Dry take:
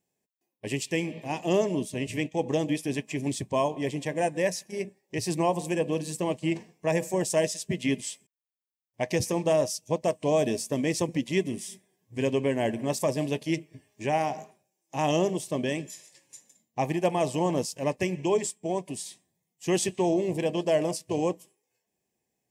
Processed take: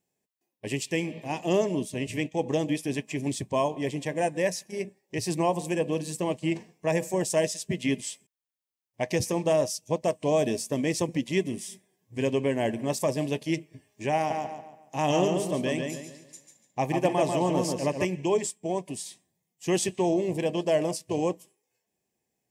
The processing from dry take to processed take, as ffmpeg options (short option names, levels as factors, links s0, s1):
-filter_complex "[0:a]asettb=1/sr,asplit=3[s0][s1][s2];[s0]atrim=end=14.164[s3];[s1]atrim=start=14.16:end=18.05,asetpts=PTS-STARTPTS,afade=t=in:d=0.004:c=qsin,afade=t=out:st=3.886:d=0.004:c=qsin,asplit=2[s4][s5];[s5]adelay=142,lowpass=f=4800:p=1,volume=0.631,asplit=2[s6][s7];[s7]adelay=142,lowpass=f=4800:p=1,volume=0.38,asplit=2[s8][s9];[s9]adelay=142,lowpass=f=4800:p=1,volume=0.38,asplit=2[s10][s11];[s11]adelay=142,lowpass=f=4800:p=1,volume=0.38,asplit=2[s12][s13];[s13]adelay=142,lowpass=f=4800:p=1,volume=0.38[s14];[s4][s6][s8][s10][s12][s14]amix=inputs=6:normalize=0,atrim=end_sample=171549[s15];[s2]atrim=start=18.046[s16];[s3][s15]acrossfade=d=0.004:c1=hsin:c2=qsin[s17];[s17][s16]acrossfade=d=0.004:c1=qsin:c2=hsin"